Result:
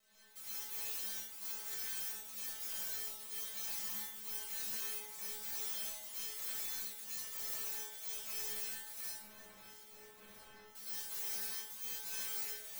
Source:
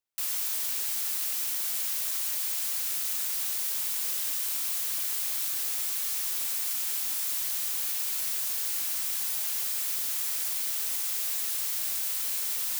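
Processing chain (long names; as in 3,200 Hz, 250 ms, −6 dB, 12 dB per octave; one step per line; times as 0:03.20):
log-companded quantiser 2 bits
surface crackle 340 per second −33 dBFS
gate pattern "x..x.xxx" 127 BPM −24 dB
stiff-string resonator 210 Hz, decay 0.51 s, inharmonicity 0.002
soft clipping −39 dBFS, distortion −13 dB
0:09.08–0:10.68: head-to-tape spacing loss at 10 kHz 42 dB
on a send: delay that swaps between a low-pass and a high-pass 655 ms, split 1,700 Hz, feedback 65%, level −13 dB
on the sum: dense smooth reverb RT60 0.68 s, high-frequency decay 0.9×, pre-delay 95 ms, DRR −9 dB
level −6 dB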